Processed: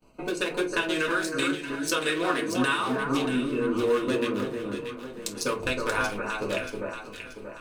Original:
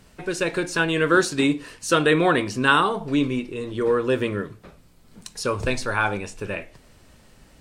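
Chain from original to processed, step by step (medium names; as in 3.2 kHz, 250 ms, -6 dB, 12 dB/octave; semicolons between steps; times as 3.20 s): local Wiener filter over 25 samples; expander -48 dBFS; tilt EQ +3.5 dB/octave; in parallel at 0 dB: peak limiter -13 dBFS, peak gain reduction 11.5 dB; on the sum: compression 6:1, threshold -27 dBFS, peak gain reduction 17.5 dB; echo whose repeats swap between lows and highs 316 ms, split 1.6 kHz, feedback 66%, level -4 dB; reverberation RT60 0.25 s, pre-delay 3 ms, DRR -2 dB; trim -1.5 dB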